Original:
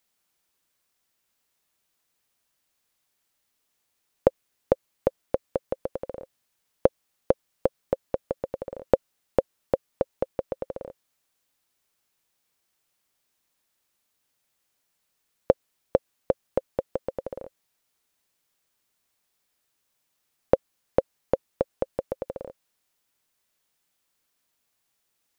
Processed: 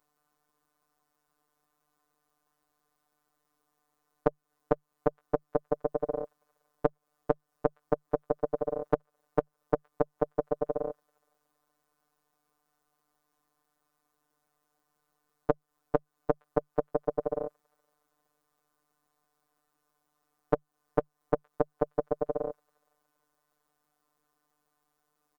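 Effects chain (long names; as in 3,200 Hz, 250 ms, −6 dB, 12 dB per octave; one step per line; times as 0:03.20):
comb filter 4 ms, depth 87%
in parallel at −0.5 dB: brickwall limiter −8.5 dBFS, peak gain reduction 8 dB
on the sum: downward compressor 6 to 1, threshold −21 dBFS, peak gain reduction 14.5 dB
parametric band 70 Hz +7 dB 0.36 octaves
on a send: delay with a high-pass on its return 467 ms, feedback 39%, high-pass 2,300 Hz, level −22 dB
on the sum: phases set to zero 149 Hz
high shelf with overshoot 1,700 Hz −12 dB, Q 1.5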